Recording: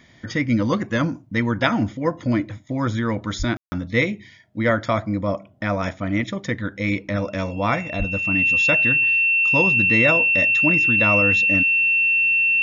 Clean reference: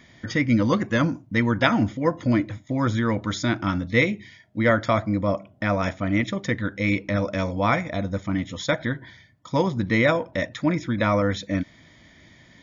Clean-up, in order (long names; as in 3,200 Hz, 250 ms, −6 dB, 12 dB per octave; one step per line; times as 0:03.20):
notch filter 2,700 Hz, Q 30
0:03.38–0:03.50: high-pass filter 140 Hz 24 dB per octave
0:07.98–0:08.10: high-pass filter 140 Hz 24 dB per octave
ambience match 0:03.57–0:03.72